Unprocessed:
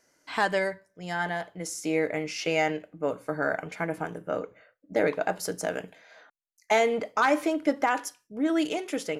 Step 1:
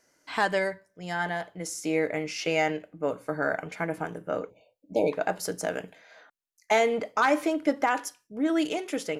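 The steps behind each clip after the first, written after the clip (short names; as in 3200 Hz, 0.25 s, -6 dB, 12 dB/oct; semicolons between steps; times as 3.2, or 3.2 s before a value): spectral delete 4.5–5.12, 1000–2200 Hz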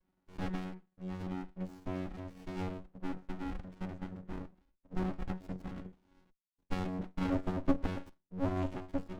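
chord vocoder bare fifth, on F#3; running maximum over 65 samples; gain -4.5 dB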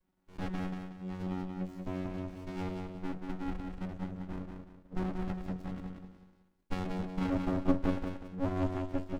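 feedback echo 0.184 s, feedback 34%, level -5 dB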